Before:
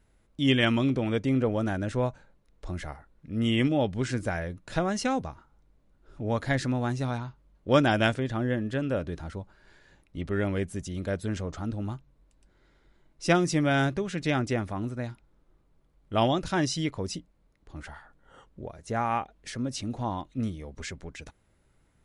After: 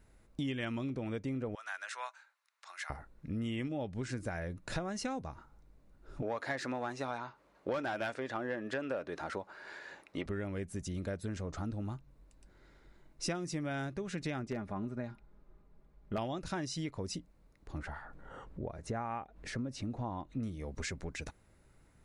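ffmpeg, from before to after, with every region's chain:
ffmpeg -i in.wav -filter_complex "[0:a]asettb=1/sr,asplit=3[link_01][link_02][link_03];[link_01]atrim=end=1.554[link_04];[link_02]atrim=start=1.55:end=2.9,asetpts=PTS-STARTPTS,afade=type=in:duration=0.004:curve=qsin,afade=type=out:start_time=1.346:duration=0.004:curve=qsin,highpass=frequency=1100:width=0.5412,highpass=frequency=1100:width=1.3066,highshelf=frequency=8100:gain=-4.5[link_05];[link_03]atrim=start=2.896[link_06];[link_04][link_05]acrossfade=duration=0.004:curve1=hsin:curve2=qsin[link_07];[link_07][link_06]acrossfade=duration=0.004:curve1=qsin:curve2=hsin,asettb=1/sr,asplit=3[link_08][link_09][link_10];[link_08]atrim=end=6.224[link_11];[link_09]atrim=start=6.22:end=10.26,asetpts=PTS-STARTPTS,afade=type=in:duration=0.004:curve=qsin,afade=type=out:start_time=4.036:duration=0.004:curve=qsin,bass=frequency=250:gain=-6,treble=frequency=4000:gain=2,asplit=2[link_12][link_13];[link_13]highpass=frequency=720:poles=1,volume=18dB,asoftclip=type=tanh:threshold=-9dB[link_14];[link_12][link_14]amix=inputs=2:normalize=0,lowpass=frequency=1900:poles=1,volume=-6dB,highpass=frequency=140:poles=1[link_15];[link_10]atrim=start=10.256[link_16];[link_11][link_15]acrossfade=duration=0.004:curve1=hsin:curve2=qsin[link_17];[link_17][link_16]acrossfade=duration=0.004:curve1=qsin:curve2=hsin,asettb=1/sr,asplit=3[link_18][link_19][link_20];[link_18]atrim=end=14.434[link_21];[link_19]atrim=start=14.43:end=16.18,asetpts=PTS-STARTPTS,afade=type=in:duration=0.004:curve=qsin,afade=type=out:start_time=1.746:duration=0.004:curve=qsin,lowpass=frequency=2300:poles=1,aecho=1:1:4.9:0.43,atrim=end_sample=77175,aeval=exprs='0.126*(abs(mod(val(0)/0.126+3,4)-2)-1)':channel_layout=same[link_22];[link_20]atrim=start=16.176[link_23];[link_21][link_22]acrossfade=duration=0.004:curve1=hsin:curve2=qsin[link_24];[link_24][link_23]acrossfade=duration=0.004:curve1=qsin:curve2=hsin,asettb=1/sr,asplit=3[link_25][link_26][link_27];[link_25]atrim=end=17.784[link_28];[link_26]atrim=start=17.78:end=20.43,asetpts=PTS-STARTPTS,afade=type=in:duration=0.004:curve=qsin,afade=type=out:start_time=2.646:duration=0.004:curve=qsin,highshelf=frequency=3500:gain=-11,acompressor=mode=upward:threshold=-43dB:ratio=2.5:attack=3.2:release=140:knee=2.83:detection=peak[link_29];[link_27]atrim=start=20.426[link_30];[link_28][link_29]acrossfade=duration=0.004:curve1=hsin:curve2=qsin[link_31];[link_31][link_30]acrossfade=duration=0.004:curve1=qsin:curve2=hsin,equalizer=frequency=3200:width=5.6:gain=-5.5,acompressor=threshold=-37dB:ratio=6,volume=2dB" out.wav

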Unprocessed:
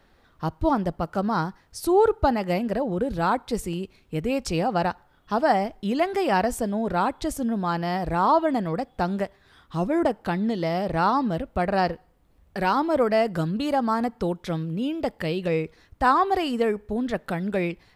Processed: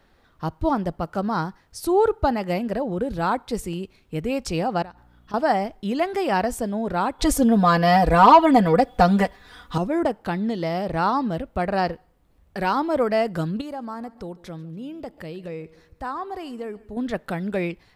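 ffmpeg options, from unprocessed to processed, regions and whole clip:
ffmpeg -i in.wav -filter_complex "[0:a]asettb=1/sr,asplit=3[link_01][link_02][link_03];[link_01]atrim=end=4.824[link_04];[link_02]atrim=start=4.82:end=5.34,asetpts=PTS-STARTPTS,afade=type=in:duration=0.004:curve=qsin,afade=type=out:start_time=0.516:duration=0.004:curve=qsin,acompressor=threshold=-37dB:ratio=8:attack=3.2:release=140:knee=1:detection=peak,aeval=exprs='val(0)+0.002*(sin(2*PI*60*n/s)+sin(2*PI*2*60*n/s)/2+sin(2*PI*3*60*n/s)/3+sin(2*PI*4*60*n/s)/4+sin(2*PI*5*60*n/s)/5)':channel_layout=same[link_05];[link_03]atrim=start=5.336[link_06];[link_04][link_05]acrossfade=duration=0.004:curve1=hsin:curve2=qsin[link_07];[link_07][link_06]acrossfade=duration=0.004:curve1=qsin:curve2=hsin,asettb=1/sr,asplit=3[link_08][link_09][link_10];[link_08]atrim=end=7.194[link_11];[link_09]atrim=start=7.19:end=9.78,asetpts=PTS-STARTPTS,afade=type=in:duration=0.004:curve=qsin,afade=type=out:start_time=2.586:duration=0.004:curve=qsin,equalizer=frequency=240:width=4:gain=-5.5,aecho=1:1:4.1:0.98,atrim=end_sample=114219,acontrast=82[link_12];[link_10]atrim=start=9.776[link_13];[link_11][link_12]acrossfade=duration=0.004:curve1=hsin:curve2=qsin[link_14];[link_14][link_13]acrossfade=duration=0.004:curve1=qsin:curve2=hsin,asettb=1/sr,asplit=3[link_15][link_16][link_17];[link_15]atrim=end=13.614[link_18];[link_16]atrim=start=13.61:end=16.97,asetpts=PTS-STARTPTS,afade=type=in:duration=0.004:curve=qsin,afade=type=out:start_time=3.356:duration=0.004:curve=qsin,equalizer=frequency=3000:width=1:gain=-4,acompressor=threshold=-46dB:ratio=1.5:attack=3.2:release=140:knee=1:detection=peak,aecho=1:1:143|286|429:0.0891|0.0401|0.018,atrim=end_sample=148176[link_19];[link_17]atrim=start=16.966[link_20];[link_18][link_19]acrossfade=duration=0.004:curve1=hsin:curve2=qsin[link_21];[link_21][link_20]acrossfade=duration=0.004:curve1=qsin:curve2=hsin" out.wav

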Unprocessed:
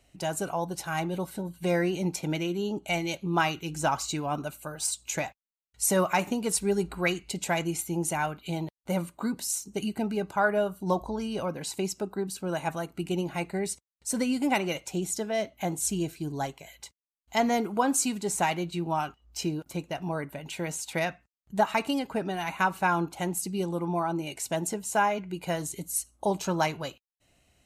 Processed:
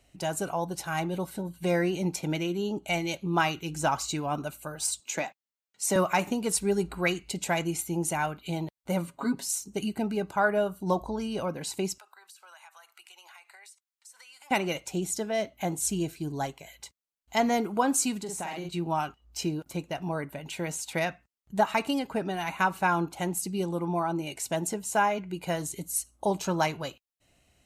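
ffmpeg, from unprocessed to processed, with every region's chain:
ffmpeg -i in.wav -filter_complex "[0:a]asettb=1/sr,asplit=3[link_01][link_02][link_03];[link_01]atrim=end=5.004[link_04];[link_02]atrim=start=5:end=5.96,asetpts=PTS-STARTPTS,afade=type=in:duration=0.004:curve=qsin,afade=type=out:start_time=0.956:duration=0.004:curve=qsin,highpass=frequency=180:width=0.5412,highpass=frequency=180:width=1.3066,equalizer=frequency=11000:width=1.6:gain=-8[link_05];[link_03]atrim=start=5.956[link_06];[link_04][link_05]acrossfade=duration=0.004:curve1=hsin:curve2=qsin[link_07];[link_07][link_06]acrossfade=duration=0.004:curve1=qsin:curve2=hsin,asettb=1/sr,asplit=3[link_08][link_09][link_10];[link_08]atrim=end=9.074[link_11];[link_09]atrim=start=9.07:end=9.49,asetpts=PTS-STARTPTS,afade=type=in:duration=0.004:curve=qsin,afade=type=out:start_time=0.416:duration=0.004:curve=qsin,highshelf=frequency=7600:gain=-8,aecho=1:1:7.3:0.85,atrim=end_sample=18522[link_12];[link_10]atrim=start=9.486[link_13];[link_11][link_12]acrossfade=duration=0.004:curve1=hsin:curve2=qsin[link_14];[link_14][link_13]acrossfade=duration=0.004:curve1=qsin:curve2=hsin,asettb=1/sr,asplit=3[link_15][link_16][link_17];[link_15]atrim=end=11.984[link_18];[link_16]atrim=start=11.98:end=14.51,asetpts=PTS-STARTPTS,afade=type=in:duration=0.004:curve=qsin,afade=type=out:start_time=2.526:duration=0.004:curve=qsin,highpass=frequency=970:width=0.5412,highpass=frequency=970:width=1.3066,acompressor=threshold=-48dB:ratio=12:attack=3.2:release=140:knee=1:detection=peak[link_19];[link_17]atrim=start=14.506[link_20];[link_18][link_19]acrossfade=duration=0.004:curve1=hsin:curve2=qsin[link_21];[link_21][link_20]acrossfade=duration=0.004:curve1=qsin:curve2=hsin,asettb=1/sr,asplit=3[link_22][link_23][link_24];[link_22]atrim=end=18.194[link_25];[link_23]atrim=start=18.19:end=18.69,asetpts=PTS-STARTPTS,afade=type=in:duration=0.004:curve=qsin,afade=type=out:start_time=0.496:duration=0.004:curve=qsin,asplit=2[link_26][link_27];[link_27]adelay=47,volume=-4.5dB[link_28];[link_26][link_28]amix=inputs=2:normalize=0,atrim=end_sample=22050,acompressor=threshold=-33dB:ratio=4:attack=3.2:release=140:knee=1:detection=peak[link_29];[link_24]atrim=start=18.686[link_30];[link_25][link_29]acrossfade=duration=0.004:curve1=hsin:curve2=qsin[link_31];[link_31][link_30]acrossfade=duration=0.004:curve1=qsin:curve2=hsin" out.wav

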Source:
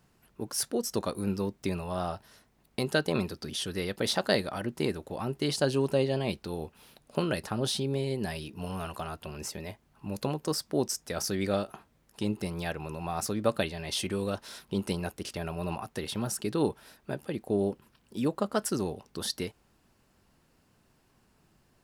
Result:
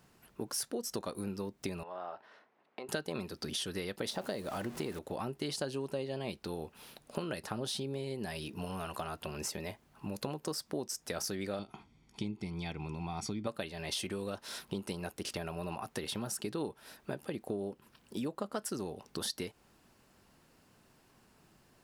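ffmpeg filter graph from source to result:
ffmpeg -i in.wav -filter_complex "[0:a]asettb=1/sr,asplit=3[link_01][link_02][link_03];[link_01]atrim=end=1.834[link_04];[link_02]atrim=start=1.83:end=2.89,asetpts=PTS-STARTPTS,afade=type=in:duration=0.004:curve=qsin,afade=type=out:start_time=1.056:duration=0.004:curve=qsin,acompressor=threshold=-40dB:ratio=3:attack=3.2:release=140:knee=1:detection=peak,highpass=420,lowpass=2100[link_05];[link_03]atrim=start=2.886[link_06];[link_04][link_05]acrossfade=duration=0.004:curve1=hsin:curve2=qsin[link_07];[link_07][link_06]acrossfade=duration=0.004:curve1=qsin:curve2=hsin,asettb=1/sr,asplit=3[link_08][link_09][link_10];[link_08]atrim=end=4.104[link_11];[link_09]atrim=start=4.1:end=4.99,asetpts=PTS-STARTPTS,afade=type=in:duration=0.004:curve=qsin,afade=type=out:start_time=0.886:duration=0.004:curve=qsin,aeval=exprs='val(0)+0.5*0.0133*sgn(val(0))':channel_layout=same,acrossover=split=870|7500[link_12][link_13][link_14];[link_12]acompressor=threshold=-26dB:ratio=4[link_15];[link_13]acompressor=threshold=-38dB:ratio=4[link_16];[link_14]acompressor=threshold=-48dB:ratio=4[link_17];[link_15][link_16][link_17]amix=inputs=3:normalize=0[link_18];[link_10]atrim=start=4.986[link_19];[link_11][link_18]acrossfade=duration=0.004:curve1=hsin:curve2=qsin[link_20];[link_20][link_19]acrossfade=duration=0.004:curve1=qsin:curve2=hsin,asettb=1/sr,asplit=3[link_21][link_22][link_23];[link_21]atrim=end=11.594[link_24];[link_22]atrim=start=11.59:end=13.47,asetpts=PTS-STARTPTS,afade=type=in:duration=0.004:curve=qsin,afade=type=out:start_time=1.876:duration=0.004:curve=qsin,lowpass=5100,equalizer=frequency=1200:width_type=o:width=0.68:gain=-11.5,aecho=1:1:0.9:0.74,atrim=end_sample=82908[link_25];[link_23]atrim=start=13.466[link_26];[link_24][link_25]acrossfade=duration=0.004:curve1=hsin:curve2=qsin[link_27];[link_27][link_26]acrossfade=duration=0.004:curve1=qsin:curve2=hsin,acompressor=threshold=-37dB:ratio=5,lowshelf=frequency=120:gain=-7,volume=3dB" out.wav

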